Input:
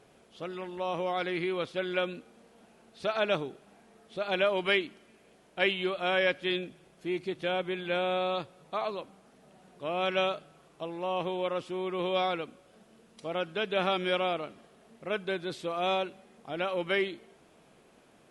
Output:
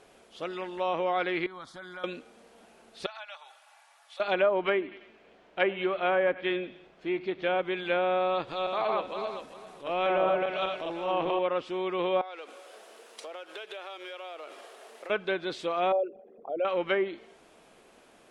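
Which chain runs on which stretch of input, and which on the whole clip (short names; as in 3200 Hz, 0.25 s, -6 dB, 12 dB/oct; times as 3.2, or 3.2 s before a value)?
1.46–2.04 compressor 4:1, threshold -36 dBFS + fixed phaser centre 1100 Hz, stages 4
3.06–4.2 steep high-pass 740 Hz + compressor 3:1, threshold -51 dBFS + comb 3.5 ms, depth 50%
4.72–7.59 LPF 3400 Hz + feedback echo 97 ms, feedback 42%, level -19.5 dB
8.27–11.39 regenerating reverse delay 0.199 s, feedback 43%, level -1 dB + transient shaper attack -8 dB, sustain +3 dB
12.21–15.1 G.711 law mismatch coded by mu + HPF 390 Hz 24 dB/oct + compressor 12:1, threshold -41 dBFS
15.92–16.65 formant sharpening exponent 3 + mismatched tape noise reduction encoder only
whole clip: treble ducked by the level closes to 1200 Hz, closed at -24 dBFS; bell 130 Hz -10 dB 1.8 oct; gain +4.5 dB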